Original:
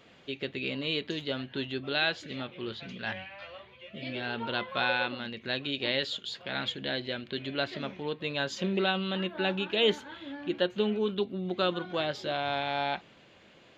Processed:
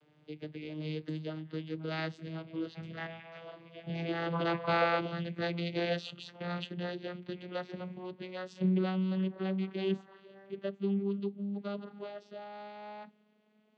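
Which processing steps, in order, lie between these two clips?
vocoder on a note that slides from D3, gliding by +7 st; Doppler pass-by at 4.63 s, 8 m/s, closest 9.9 m; trim +7.5 dB

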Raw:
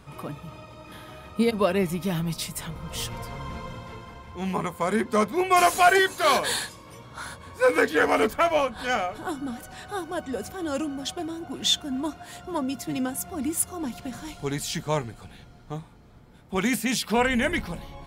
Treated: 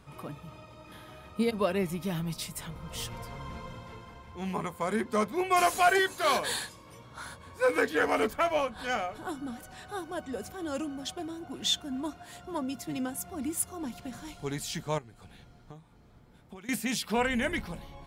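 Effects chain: 14.98–16.69 s: compression 16:1, threshold -39 dBFS, peak gain reduction 19.5 dB; trim -5.5 dB

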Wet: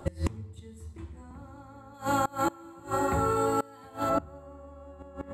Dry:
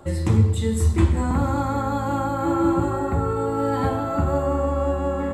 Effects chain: 1.94–4.10 s: tilt EQ +2.5 dB/octave; inverted gate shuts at -15 dBFS, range -25 dB

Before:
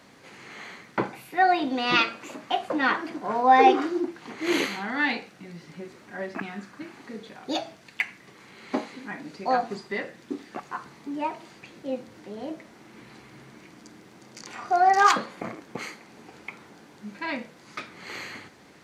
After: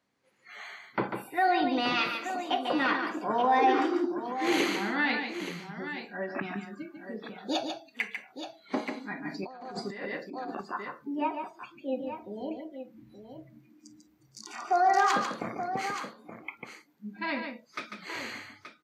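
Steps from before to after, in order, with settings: spectral noise reduction 23 dB; peak limiter -15.5 dBFS, peak gain reduction 10.5 dB; multi-tap echo 145/876 ms -6.5/-10 dB; 9.25–10.61 s: compressor with a negative ratio -37 dBFS, ratio -1; trim -1.5 dB

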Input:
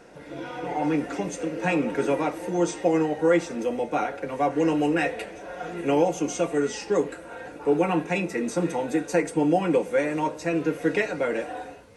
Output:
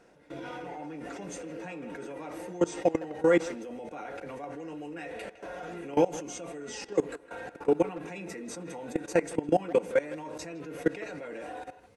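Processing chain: level held to a coarse grid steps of 20 dB; speakerphone echo 160 ms, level -14 dB

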